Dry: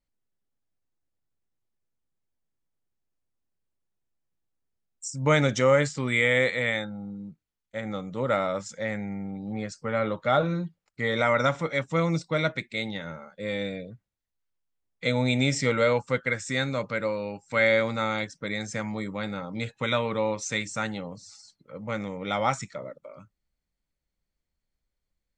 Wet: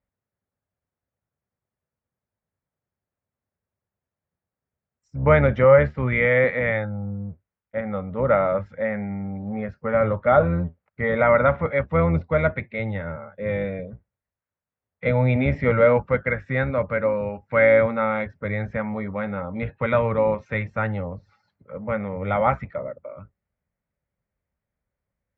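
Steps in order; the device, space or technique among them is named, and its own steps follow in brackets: sub-octave bass pedal (octave divider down 1 oct, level -4 dB; cabinet simulation 66–2100 Hz, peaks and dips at 97 Hz +4 dB, 310 Hz -8 dB, 580 Hz +4 dB); trim +4.5 dB

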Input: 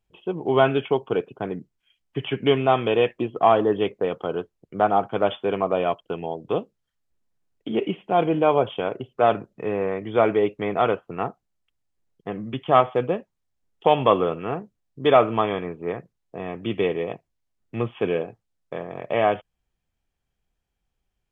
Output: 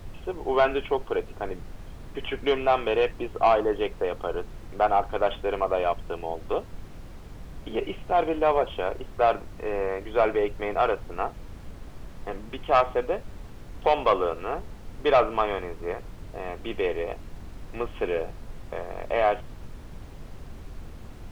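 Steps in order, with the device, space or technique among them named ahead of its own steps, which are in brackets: aircraft cabin announcement (band-pass 440–3100 Hz; saturation -11 dBFS, distortion -16 dB; brown noise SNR 10 dB)

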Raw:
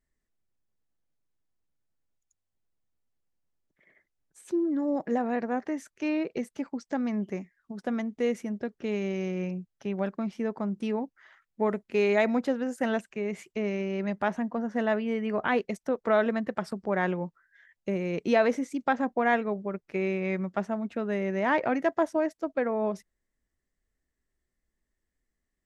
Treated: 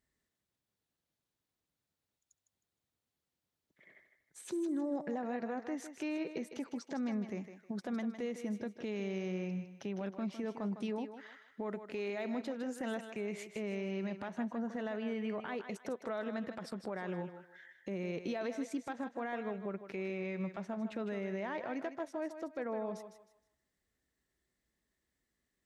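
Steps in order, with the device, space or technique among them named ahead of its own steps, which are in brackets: broadcast voice chain (high-pass 71 Hz; de-esser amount 95%; compression 5:1, threshold -35 dBFS, peak gain reduction 15 dB; peaking EQ 3.8 kHz +4.5 dB 0.55 oct; peak limiter -31 dBFS, peak gain reduction 9.5 dB); 14.29–15.18 s: band-stop 5.2 kHz, Q 10; thinning echo 156 ms, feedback 31%, high-pass 330 Hz, level -8.5 dB; trim +1 dB

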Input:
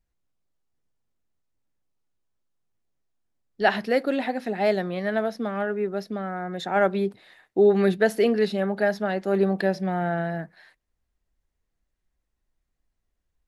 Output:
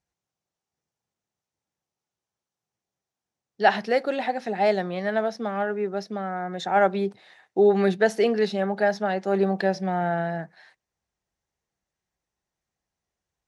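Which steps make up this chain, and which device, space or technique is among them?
car door speaker (cabinet simulation 110–9400 Hz, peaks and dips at 270 Hz -7 dB, 810 Hz +5 dB, 5.9 kHz +6 dB)

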